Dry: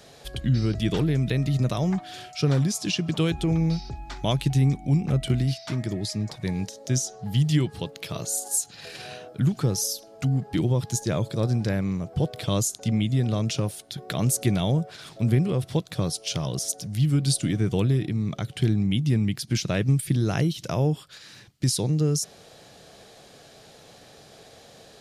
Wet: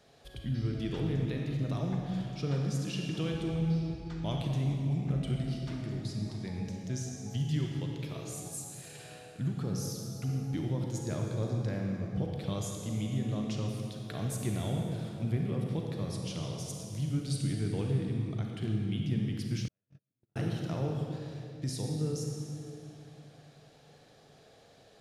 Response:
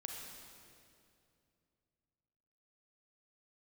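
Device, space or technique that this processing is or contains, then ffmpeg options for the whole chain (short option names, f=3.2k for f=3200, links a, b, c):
swimming-pool hall: -filter_complex "[1:a]atrim=start_sample=2205[a];[0:a][a]afir=irnorm=-1:irlink=0,highshelf=f=4.6k:g=-7,asettb=1/sr,asplit=3[b][c][d];[b]atrim=end=19.684[e];[c]atrim=start=19.68:end=20.36,asetpts=PTS-STARTPTS,afade=t=in:d=0.004:c=qsin,afade=t=out:st=0.676:d=0.004:c=qsin,agate=range=-57dB:threshold=-16dB:ratio=16:detection=peak[f];[d]atrim=start=20.356[g];[e][f]acrossfade=d=0.004:c1=hsin:c2=qsin[h];[h][g]acrossfade=d=0.004:c1=qsin:c2=hsin,volume=-7dB"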